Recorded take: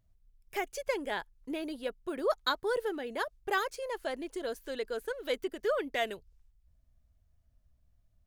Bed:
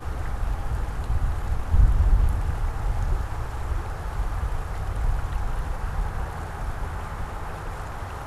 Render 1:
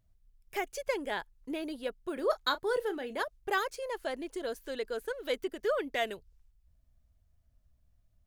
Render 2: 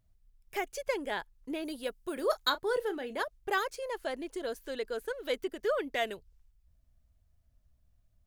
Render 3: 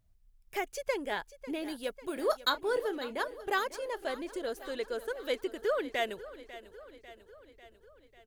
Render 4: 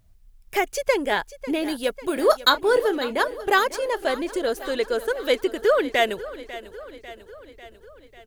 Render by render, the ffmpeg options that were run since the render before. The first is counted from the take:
-filter_complex "[0:a]asettb=1/sr,asplit=3[s0][s1][s2];[s0]atrim=end=2.134[s3];[s1]atrim=start=2.13:end=3.23,asetpts=PTS-STARTPTS,afade=t=in:d=0.004:c=qsin,afade=t=out:st=1.096:d=0.004:c=qsin,asplit=2[s4][s5];[s5]adelay=32,volume=0.224[s6];[s4][s6]amix=inputs=2:normalize=0,atrim=end_sample=48510[s7];[s2]atrim=start=3.226[s8];[s3][s7]acrossfade=d=0.004:c1=hsin:c2=qsin[s9];[s9][s8]acrossfade=d=0.004:c1=qsin:c2=hsin"
-filter_complex "[0:a]asettb=1/sr,asplit=3[s0][s1][s2];[s0]atrim=end=1.654[s3];[s1]atrim=start=1.65:end=2.5,asetpts=PTS-STARTPTS,afade=t=in:d=0.004:c=qsin,afade=t=out:st=0.846:d=0.004:c=qsin,aemphasis=mode=production:type=cd[s4];[s2]atrim=start=2.496[s5];[s3][s4]acrossfade=d=0.004:c1=hsin:c2=qsin[s6];[s6][s5]acrossfade=d=0.004:c1=qsin:c2=hsin"
-af "aecho=1:1:546|1092|1638|2184|2730|3276:0.158|0.0951|0.0571|0.0342|0.0205|0.0123"
-af "volume=3.76"

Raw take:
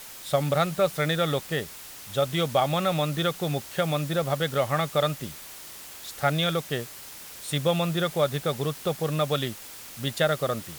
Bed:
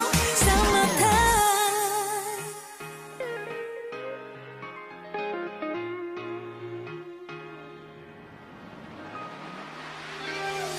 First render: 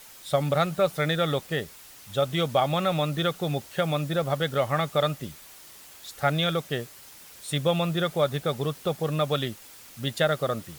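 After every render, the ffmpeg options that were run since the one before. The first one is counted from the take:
-af "afftdn=nr=6:nf=-43"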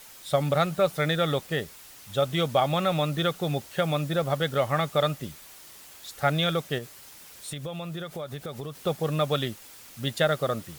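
-filter_complex "[0:a]asettb=1/sr,asplit=3[s0][s1][s2];[s0]atrim=end=6.784[s3];[s1]atrim=start=6.78:end=8.77,asetpts=PTS-STARTPTS,afade=t=in:d=0.004:c=qsin,afade=t=out:st=1.986:d=0.004:c=qsin,acompressor=threshold=0.0251:ratio=6:attack=3.2:release=140:knee=1:detection=peak[s4];[s2]atrim=start=8.766[s5];[s3][s4]acrossfade=d=0.004:c1=hsin:c2=qsin[s6];[s6][s5]acrossfade=d=0.004:c1=qsin:c2=hsin"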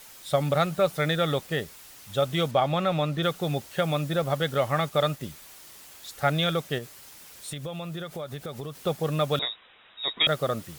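-filter_complex "[0:a]asettb=1/sr,asplit=3[s0][s1][s2];[s0]atrim=end=2.514[s3];[s1]atrim=start=2.51:end=3.23,asetpts=PTS-STARTPTS,afade=t=in:d=0.004:c=qsin,afade=t=out:st=0.716:d=0.004:c=qsin,highshelf=f=6300:g=-11[s4];[s2]atrim=start=3.226[s5];[s3][s4]acrossfade=d=0.004:c1=hsin:c2=qsin[s6];[s6][s5]acrossfade=d=0.004:c1=qsin:c2=hsin,asettb=1/sr,asplit=3[s7][s8][s9];[s7]atrim=end=4.094[s10];[s8]atrim=start=4.09:end=5.22,asetpts=PTS-STARTPTS,afade=t=in:d=0.004:c=qsin,afade=t=out:st=1.126:d=0.004:c=qsin,aeval=exprs='val(0)*gte(abs(val(0)),0.00562)':c=same[s11];[s9]atrim=start=5.216[s12];[s10][s11]acrossfade=d=0.004:c1=hsin:c2=qsin[s13];[s13][s12]acrossfade=d=0.004:c1=qsin:c2=hsin,asettb=1/sr,asplit=3[s14][s15][s16];[s14]atrim=end=9.394[s17];[s15]atrim=start=9.39:end=10.27,asetpts=PTS-STARTPTS,afade=t=in:d=0.004:c=qsin,afade=t=out:st=0.876:d=0.004:c=qsin,lowpass=f=3300:t=q:w=0.5098,lowpass=f=3300:t=q:w=0.6013,lowpass=f=3300:t=q:w=0.9,lowpass=f=3300:t=q:w=2.563,afreqshift=-3900[s18];[s16]atrim=start=10.266[s19];[s17][s18]acrossfade=d=0.004:c1=hsin:c2=qsin[s20];[s20][s19]acrossfade=d=0.004:c1=qsin:c2=hsin"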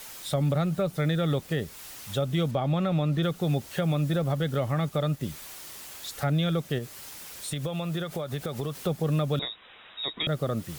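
-filter_complex "[0:a]acrossover=split=360[s0][s1];[s1]acompressor=threshold=0.0112:ratio=2.5[s2];[s0][s2]amix=inputs=2:normalize=0,asplit=2[s3][s4];[s4]alimiter=level_in=1.19:limit=0.0631:level=0:latency=1,volume=0.841,volume=0.794[s5];[s3][s5]amix=inputs=2:normalize=0"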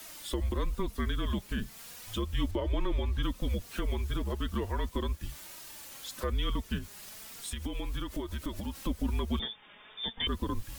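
-af "afreqshift=-210,flanger=delay=3.1:depth=1.8:regen=40:speed=0.36:shape=triangular"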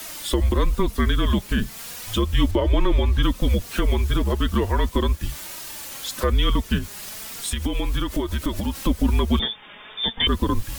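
-af "volume=3.76"

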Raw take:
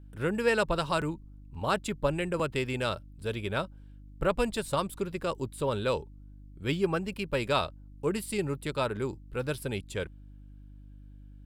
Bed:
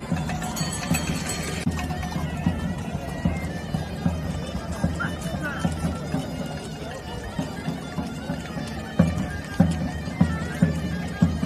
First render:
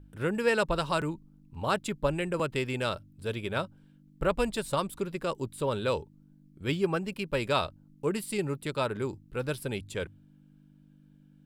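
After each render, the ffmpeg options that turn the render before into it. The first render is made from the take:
-af "bandreject=f=50:t=h:w=4,bandreject=f=100:t=h:w=4"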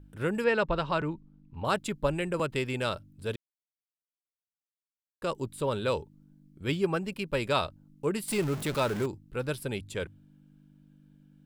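-filter_complex "[0:a]asettb=1/sr,asplit=3[s0][s1][s2];[s0]atrim=end=0.444[s3];[s1]atrim=start=0.44:end=1.65,asetpts=PTS-STARTPTS,afade=t=in:d=0.004:c=qsin,afade=t=out:st=1.206:d=0.004:c=qsin,lowpass=3400[s4];[s2]atrim=start=1.646[s5];[s3][s4]acrossfade=d=0.004:c1=hsin:c2=qsin[s6];[s6][s5]acrossfade=d=0.004:c1=qsin:c2=hsin,asettb=1/sr,asplit=3[s7][s8][s9];[s7]atrim=end=8.284[s10];[s8]atrim=start=8.28:end=9.06,asetpts=PTS-STARTPTS,afade=t=in:d=0.004:c=qsin,afade=t=out:st=0.776:d=0.004:c=qsin,aeval=exprs='val(0)+0.5*0.0224*sgn(val(0))':c=same[s11];[s9]atrim=start=9.056[s12];[s10][s11]acrossfade=d=0.004:c1=hsin:c2=qsin[s13];[s13][s12]acrossfade=d=0.004:c1=qsin:c2=hsin,asplit=3[s14][s15][s16];[s14]atrim=end=3.36,asetpts=PTS-STARTPTS,afade=t=out:st=3.356:d=0.004:c=hsin[s17];[s15]atrim=start=3.36:end=5.22,asetpts=PTS-STARTPTS,volume=0[s18];[s16]atrim=start=5.22,asetpts=PTS-STARTPTS,afade=t=in:d=0.004:c=hsin[s19];[s17][s18][s19]concat=n=3:v=0:a=1"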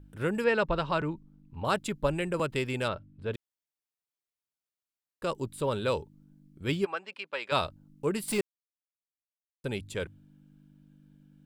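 -filter_complex "[0:a]asplit=3[s0][s1][s2];[s0]afade=t=out:st=2.87:d=0.02[s3];[s1]lowpass=2600,afade=t=in:st=2.87:d=0.02,afade=t=out:st=3.33:d=0.02[s4];[s2]afade=t=in:st=3.33:d=0.02[s5];[s3][s4][s5]amix=inputs=3:normalize=0,asplit=3[s6][s7][s8];[s6]afade=t=out:st=6.84:d=0.02[s9];[s7]highpass=770,lowpass=4000,afade=t=in:st=6.84:d=0.02,afade=t=out:st=7.51:d=0.02[s10];[s8]afade=t=in:st=7.51:d=0.02[s11];[s9][s10][s11]amix=inputs=3:normalize=0,asplit=3[s12][s13][s14];[s12]atrim=end=8.41,asetpts=PTS-STARTPTS,afade=t=out:st=8.406:d=0.004:c=hsin[s15];[s13]atrim=start=8.41:end=9.64,asetpts=PTS-STARTPTS,volume=0[s16];[s14]atrim=start=9.64,asetpts=PTS-STARTPTS,afade=t=in:d=0.004:c=hsin[s17];[s15][s16][s17]concat=n=3:v=0:a=1"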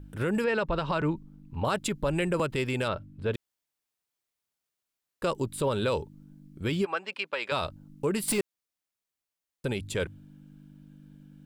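-af "acontrast=70,alimiter=limit=0.119:level=0:latency=1:release=107"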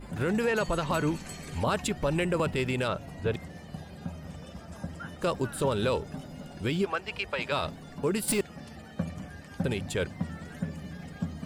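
-filter_complex "[1:a]volume=0.211[s0];[0:a][s0]amix=inputs=2:normalize=0"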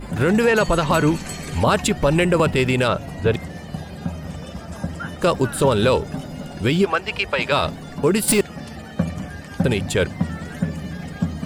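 -af "volume=3.35"

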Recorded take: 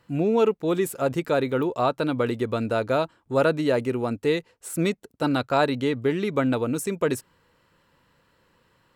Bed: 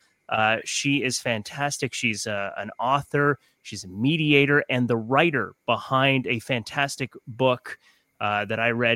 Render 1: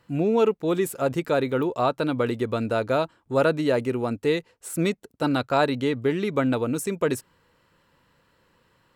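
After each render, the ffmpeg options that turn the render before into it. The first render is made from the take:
-af anull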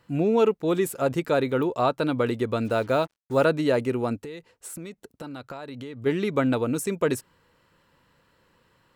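-filter_complex "[0:a]asplit=3[s0][s1][s2];[s0]afade=t=out:st=2.64:d=0.02[s3];[s1]acrusher=bits=7:mix=0:aa=0.5,afade=t=in:st=2.64:d=0.02,afade=t=out:st=3.44:d=0.02[s4];[s2]afade=t=in:st=3.44:d=0.02[s5];[s3][s4][s5]amix=inputs=3:normalize=0,asplit=3[s6][s7][s8];[s6]afade=t=out:st=4.21:d=0.02[s9];[s7]acompressor=threshold=0.02:ratio=10:attack=3.2:release=140:knee=1:detection=peak,afade=t=in:st=4.21:d=0.02,afade=t=out:st=6.05:d=0.02[s10];[s8]afade=t=in:st=6.05:d=0.02[s11];[s9][s10][s11]amix=inputs=3:normalize=0"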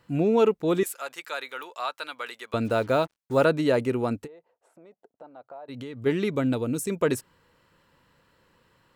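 -filter_complex "[0:a]asettb=1/sr,asplit=3[s0][s1][s2];[s0]atrim=end=0.834[s3];[s1]atrim=start=0.83:end=2.54,asetpts=PTS-STARTPTS,afade=t=in:d=0.004:c=qsin,afade=t=out:st=1.706:d=0.004:c=qsin,highpass=1300[s4];[s2]atrim=start=2.536[s5];[s3][s4]acrossfade=d=0.004:c1=hsin:c2=qsin[s6];[s6][s5]acrossfade=d=0.004:c1=qsin:c2=hsin,asplit=3[s7][s8][s9];[s7]afade=t=out:st=4.26:d=0.02[s10];[s8]bandpass=f=690:t=q:w=2.9,afade=t=in:st=4.26:d=0.02,afade=t=out:st=5.68:d=0.02[s11];[s9]afade=t=in:st=5.68:d=0.02[s12];[s10][s11][s12]amix=inputs=3:normalize=0,asettb=1/sr,asplit=3[s13][s14][s15];[s13]atrim=end=6.354[s16];[s14]atrim=start=6.35:end=6.9,asetpts=PTS-STARTPTS,afade=t=in:d=0.004:c=qsin,afade=t=out:st=0.546:d=0.004:c=qsin,equalizer=f=1200:t=o:w=2.6:g=-7[s17];[s15]atrim=start=6.896[s18];[s16][s17]acrossfade=d=0.004:c1=hsin:c2=qsin[s19];[s19][s18]acrossfade=d=0.004:c1=qsin:c2=hsin"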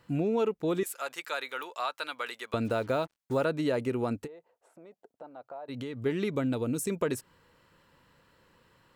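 -af "acompressor=threshold=0.0398:ratio=2.5"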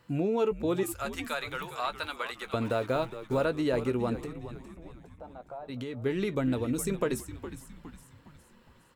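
-filter_complex "[0:a]asplit=2[s0][s1];[s1]adelay=16,volume=0.237[s2];[s0][s2]amix=inputs=2:normalize=0,asplit=6[s3][s4][s5][s6][s7][s8];[s4]adelay=412,afreqshift=-98,volume=0.251[s9];[s5]adelay=824,afreqshift=-196,volume=0.12[s10];[s6]adelay=1236,afreqshift=-294,volume=0.0575[s11];[s7]adelay=1648,afreqshift=-392,volume=0.0279[s12];[s8]adelay=2060,afreqshift=-490,volume=0.0133[s13];[s3][s9][s10][s11][s12][s13]amix=inputs=6:normalize=0"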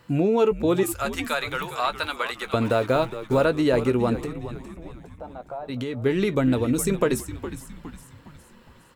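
-af "volume=2.37"

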